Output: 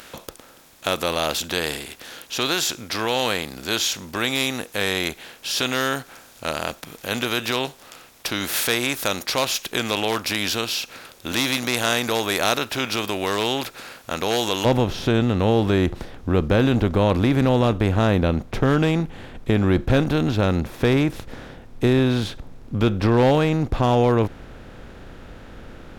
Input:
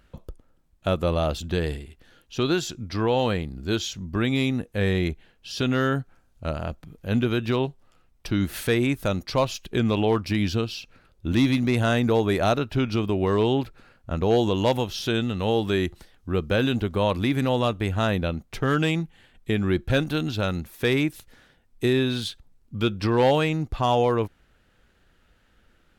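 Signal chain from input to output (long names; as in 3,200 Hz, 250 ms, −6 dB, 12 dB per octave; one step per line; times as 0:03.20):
compressor on every frequency bin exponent 0.6
spectral tilt +3.5 dB per octave, from 0:14.64 −1.5 dB per octave
level −1.5 dB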